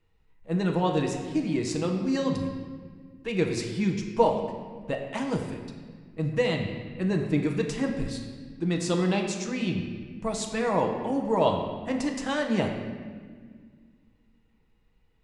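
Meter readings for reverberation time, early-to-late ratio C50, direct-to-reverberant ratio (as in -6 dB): 1.7 s, 5.0 dB, 2.0 dB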